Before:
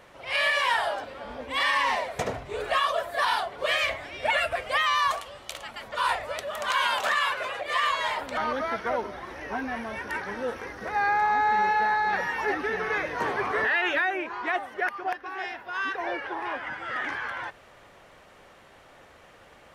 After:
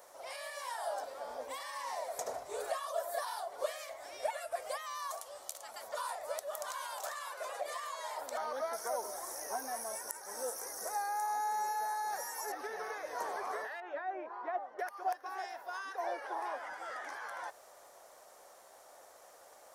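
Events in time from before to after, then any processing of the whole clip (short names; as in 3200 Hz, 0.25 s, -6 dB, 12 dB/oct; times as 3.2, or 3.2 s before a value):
8.73–12.52 resonant high shelf 5200 Hz +14 dB, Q 1.5
13.8–14.79 tape spacing loss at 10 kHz 43 dB
whole clip: pre-emphasis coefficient 0.97; compressor, threshold -45 dBFS; EQ curve 170 Hz 0 dB, 660 Hz +15 dB, 2800 Hz -12 dB, 5600 Hz +1 dB; gain +5 dB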